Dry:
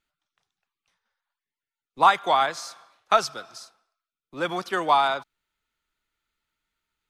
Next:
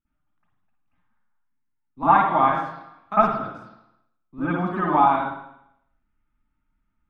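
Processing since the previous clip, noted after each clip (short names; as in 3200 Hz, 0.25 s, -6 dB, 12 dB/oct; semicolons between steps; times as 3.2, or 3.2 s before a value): EQ curve 280 Hz 0 dB, 460 Hz -17 dB, 1100 Hz -10 dB, 4300 Hz -28 dB; reverb RT60 0.75 s, pre-delay 49 ms, DRR -14.5 dB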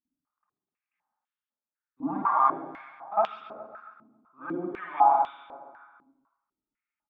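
on a send: feedback echo 0.136 s, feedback 59%, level -8 dB; on the sum: stepped band-pass 4 Hz 270–3200 Hz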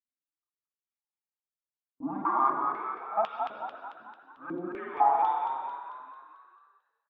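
gate with hold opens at -51 dBFS; on a send: frequency-shifting echo 0.222 s, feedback 52%, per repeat +47 Hz, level -5 dB; on the sum: gain -3.5 dB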